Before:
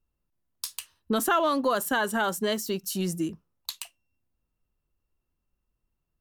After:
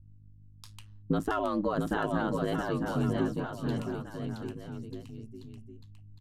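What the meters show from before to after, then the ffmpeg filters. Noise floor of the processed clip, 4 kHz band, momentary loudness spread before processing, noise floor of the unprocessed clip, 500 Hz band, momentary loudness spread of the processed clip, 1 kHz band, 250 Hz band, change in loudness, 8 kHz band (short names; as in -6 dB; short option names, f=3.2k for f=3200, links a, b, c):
-53 dBFS, -11.5 dB, 15 LU, -81 dBFS, -3.0 dB, 19 LU, -5.5 dB, +0.5 dB, -4.5 dB, -18.5 dB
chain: -af "aeval=exprs='val(0)+0.001*(sin(2*PI*50*n/s)+sin(2*PI*2*50*n/s)/2+sin(2*PI*3*50*n/s)/3+sin(2*PI*4*50*n/s)/4+sin(2*PI*5*50*n/s)/5)':c=same,aemphasis=mode=reproduction:type=riaa,aeval=exprs='val(0)*sin(2*PI*53*n/s)':c=same,aecho=1:1:670|1240|1724|2135|2485:0.631|0.398|0.251|0.158|0.1,volume=-5dB"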